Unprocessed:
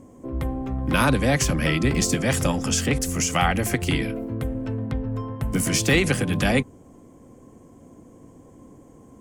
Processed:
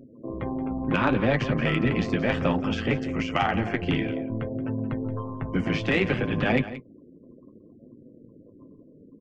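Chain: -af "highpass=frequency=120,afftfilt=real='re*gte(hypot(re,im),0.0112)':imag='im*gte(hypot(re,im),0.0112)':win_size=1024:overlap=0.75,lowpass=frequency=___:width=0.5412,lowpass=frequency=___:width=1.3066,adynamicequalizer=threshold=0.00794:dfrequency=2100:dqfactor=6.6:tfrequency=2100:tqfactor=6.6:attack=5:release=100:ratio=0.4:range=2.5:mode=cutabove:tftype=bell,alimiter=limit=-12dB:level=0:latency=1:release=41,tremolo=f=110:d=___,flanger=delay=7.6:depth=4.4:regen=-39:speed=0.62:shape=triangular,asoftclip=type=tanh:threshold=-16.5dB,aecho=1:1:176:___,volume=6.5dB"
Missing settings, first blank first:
3100, 3100, 0.667, 0.188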